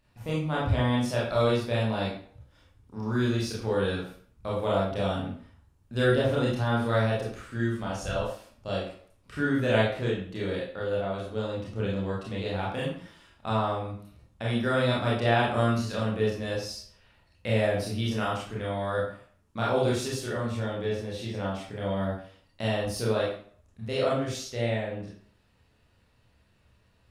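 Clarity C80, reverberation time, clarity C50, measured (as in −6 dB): 7.0 dB, 0.50 s, 2.5 dB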